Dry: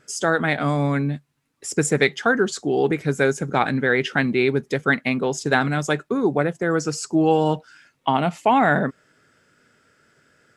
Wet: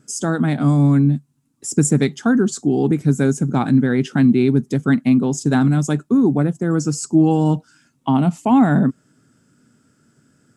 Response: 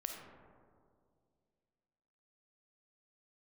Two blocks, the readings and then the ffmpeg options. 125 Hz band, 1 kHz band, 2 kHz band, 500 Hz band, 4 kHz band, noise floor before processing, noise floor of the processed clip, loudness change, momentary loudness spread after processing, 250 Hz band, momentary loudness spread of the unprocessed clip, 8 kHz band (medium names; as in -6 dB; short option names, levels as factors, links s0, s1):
+8.5 dB, -3.0 dB, -7.5 dB, -2.0 dB, -4.5 dB, -69 dBFS, -62 dBFS, +4.0 dB, 6 LU, +8.5 dB, 5 LU, +4.0 dB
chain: -af "equalizer=f=125:t=o:w=1:g=7,equalizer=f=250:t=o:w=1:g=11,equalizer=f=500:t=o:w=1:g=-7,equalizer=f=2000:t=o:w=1:g=-10,equalizer=f=4000:t=o:w=1:g=-4,equalizer=f=8000:t=o:w=1:g=6"